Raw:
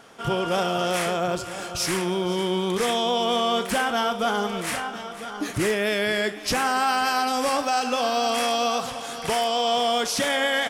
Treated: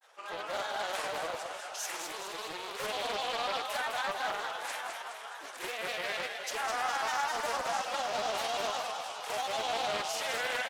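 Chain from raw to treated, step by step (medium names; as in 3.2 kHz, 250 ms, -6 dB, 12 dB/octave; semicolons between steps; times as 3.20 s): high-pass 540 Hz 24 dB/octave; granulator, spray 16 ms, pitch spread up and down by 3 st; frequency-shifting echo 208 ms, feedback 57%, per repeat +40 Hz, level -5.5 dB; loudspeaker Doppler distortion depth 0.33 ms; trim -9 dB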